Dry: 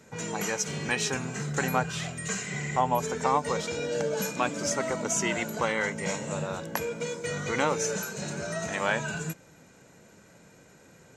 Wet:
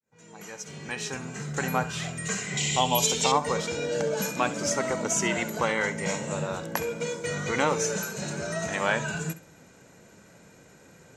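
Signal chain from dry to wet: fade-in on the opening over 2.20 s; 2.57–3.32 s: resonant high shelf 2.3 kHz +11.5 dB, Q 3; flutter echo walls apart 11.4 m, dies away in 0.26 s; trim +1.5 dB

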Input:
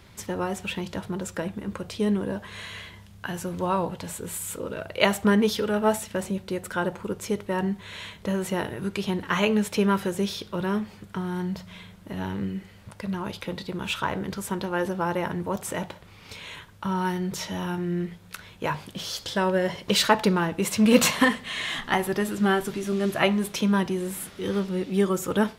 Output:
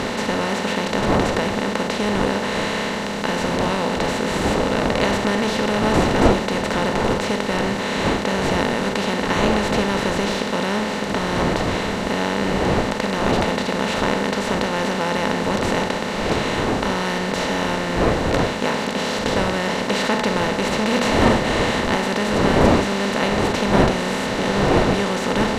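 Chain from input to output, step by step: spectral levelling over time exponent 0.2; wind noise 600 Hz -17 dBFS; distance through air 59 m; trim -7.5 dB

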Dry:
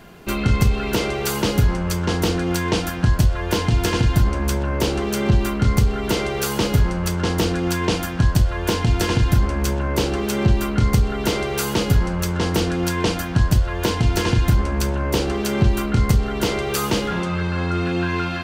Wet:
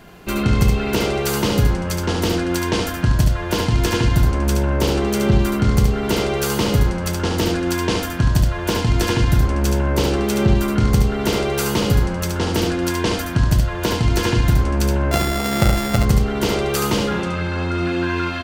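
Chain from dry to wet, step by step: 15.11–15.98 s: sorted samples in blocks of 64 samples; delay 72 ms -4.5 dB

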